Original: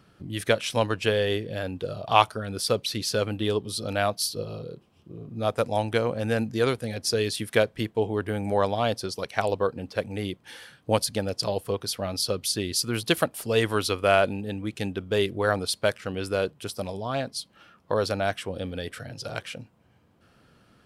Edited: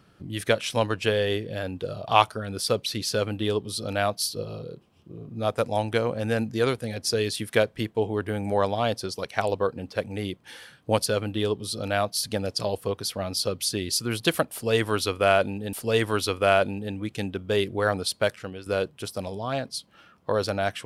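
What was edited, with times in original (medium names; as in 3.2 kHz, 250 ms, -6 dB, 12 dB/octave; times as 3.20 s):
3.11–4.28 s: copy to 11.06 s
13.35–14.56 s: loop, 2 plays
15.94–16.28 s: fade out, to -14 dB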